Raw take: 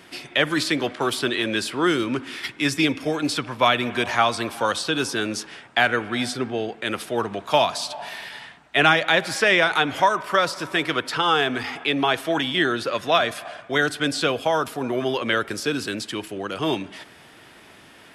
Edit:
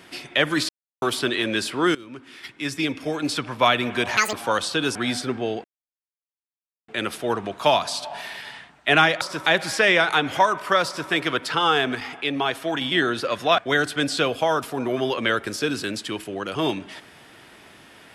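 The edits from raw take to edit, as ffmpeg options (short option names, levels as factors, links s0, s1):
-filter_complex "[0:a]asplit=13[s0][s1][s2][s3][s4][s5][s6][s7][s8][s9][s10][s11][s12];[s0]atrim=end=0.69,asetpts=PTS-STARTPTS,afade=t=out:st=0.686:d=0.004:c=hsin[s13];[s1]atrim=start=0.69:end=1.02,asetpts=PTS-STARTPTS,volume=0[s14];[s2]atrim=start=1.02:end=1.95,asetpts=PTS-STARTPTS,afade=t=in:d=0.004:c=hsin,afade=t=out:st=0.926:d=0.004:c=hsin:silence=0.1[s15];[s3]atrim=start=1.95:end=4.174,asetpts=PTS-STARTPTS,afade=t=in:d=1.58:silence=0.1[s16];[s4]atrim=start=4.17:end=4.47,asetpts=PTS-STARTPTS,asetrate=81585,aresample=44100,atrim=end_sample=7151,asetpts=PTS-STARTPTS[s17];[s5]atrim=start=4.466:end=5.092[s18];[s6]atrim=start=6.068:end=6.76,asetpts=PTS-STARTPTS,afade=t=out:st=0.688:d=0.004:c=hsin,apad=pad_dur=1.24[s19];[s7]atrim=start=6.76:end=9.092,asetpts=PTS-STARTPTS,afade=t=in:d=0.004:c=hsin[s20];[s8]atrim=start=10.478:end=10.732[s21];[s9]atrim=start=9.088:end=11.582[s22];[s10]atrim=start=11.578:end=12.442,asetpts=PTS-STARTPTS,volume=0.708[s23];[s11]atrim=start=12.438:end=13.212[s24];[s12]atrim=start=13.618[s25];[s13][s14][s15][s16]concat=n=4:v=0:a=1[s26];[s26][s17]acrossfade=d=0.004:c1=hsin:c2=hsin[s27];[s27][s18]acrossfade=d=0.004:c1=hsin:c2=hsin[s28];[s19][s20]concat=n=2:v=0:a=1[s29];[s28][s29]acrossfade=d=0.004:c1=hsin:c2=hsin[s30];[s30][s21]acrossfade=d=0.004:c1=hsin:c2=hsin[s31];[s31][s22]acrossfade=d=0.004:c1=hsin:c2=hsin[s32];[s32][s23]acrossfade=d=0.004:c1=hsin:c2=hsin[s33];[s33][s24]acrossfade=d=0.004:c1=hsin:c2=hsin[s34];[s34][s25]acrossfade=d=0.004:c1=hsin:c2=hsin"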